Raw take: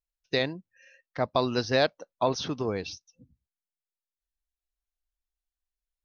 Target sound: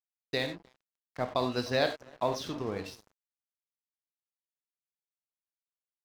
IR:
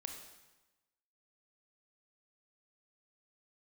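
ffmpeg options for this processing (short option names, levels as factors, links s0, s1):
-filter_complex "[0:a]asplit=2[s0][s1];[s1]adelay=304,lowpass=f=920:p=1,volume=0.126,asplit=2[s2][s3];[s3]adelay=304,lowpass=f=920:p=1,volume=0.48,asplit=2[s4][s5];[s5]adelay=304,lowpass=f=920:p=1,volume=0.48,asplit=2[s6][s7];[s7]adelay=304,lowpass=f=920:p=1,volume=0.48[s8];[s0][s2][s4][s6][s8]amix=inputs=5:normalize=0[s9];[1:a]atrim=start_sample=2205,afade=t=out:st=0.15:d=0.01,atrim=end_sample=7056[s10];[s9][s10]afir=irnorm=-1:irlink=0,aeval=exprs='sgn(val(0))*max(abs(val(0))-0.00531,0)':c=same"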